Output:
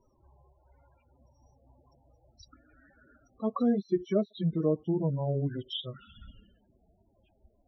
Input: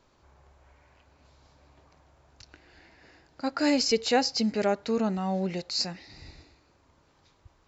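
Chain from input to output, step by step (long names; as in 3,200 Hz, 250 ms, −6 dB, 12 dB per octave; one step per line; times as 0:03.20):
pitch glide at a constant tempo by −7.5 semitones starting unshifted
parametric band 5,700 Hz +13.5 dB 0.21 octaves
spectral peaks only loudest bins 16
treble cut that deepens with the level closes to 700 Hz, closed at −24.5 dBFS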